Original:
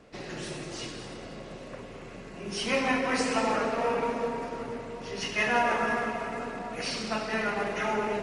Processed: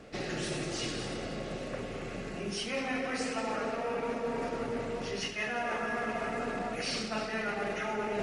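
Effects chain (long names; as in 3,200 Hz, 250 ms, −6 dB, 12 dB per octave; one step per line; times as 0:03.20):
notch filter 990 Hz, Q 6.5
reversed playback
downward compressor 10 to 1, threshold −35 dBFS, peak gain reduction 14 dB
reversed playback
level +4.5 dB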